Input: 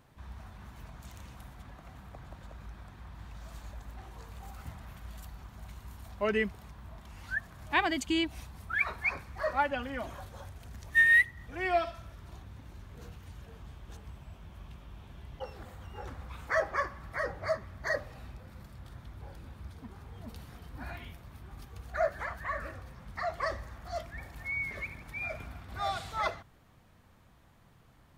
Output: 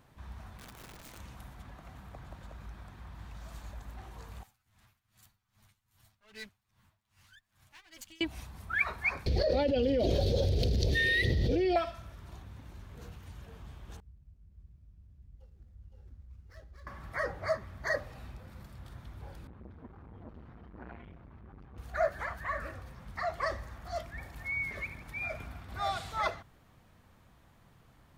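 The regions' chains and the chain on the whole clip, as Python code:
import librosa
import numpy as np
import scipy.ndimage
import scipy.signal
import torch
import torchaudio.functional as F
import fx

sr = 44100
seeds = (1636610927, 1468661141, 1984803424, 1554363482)

y = fx.chain(x, sr, fx.highpass(hz=61.0, slope=12),
    fx.overflow_wrap(gain_db=44.0), at=(0.57, 1.18))
y = fx.chain(y, sr, fx.lower_of_two(delay_ms=9.3),
    fx.tone_stack(knobs='5-5-5'),
    fx.tremolo_db(hz=2.5, depth_db=19), at=(4.43, 8.21))
y = fx.chain(y, sr, fx.curve_eq(hz=(250.0, 480.0, 1100.0, 4500.0, 7600.0), db=(0, 11, -29, 7, -15)),
    fx.env_flatten(amount_pct=100), at=(9.26, 11.76))
y = fx.chain(y, sr, fx.median_filter(points=15),
    fx.tone_stack(knobs='10-0-1'),
    fx.echo_single(ms=514, db=-3.0), at=(14.0, 16.87))
y = fx.chain(y, sr, fx.lowpass(hz=1700.0, slope=12),
    fx.transformer_sat(knee_hz=530.0), at=(19.47, 21.78))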